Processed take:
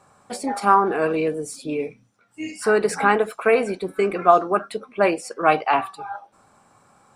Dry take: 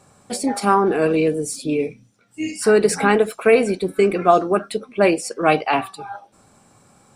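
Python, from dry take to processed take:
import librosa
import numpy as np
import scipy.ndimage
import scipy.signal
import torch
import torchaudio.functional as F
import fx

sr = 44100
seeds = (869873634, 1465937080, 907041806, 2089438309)

y = fx.peak_eq(x, sr, hz=1100.0, db=10.0, octaves=1.9)
y = F.gain(torch.from_numpy(y), -7.5).numpy()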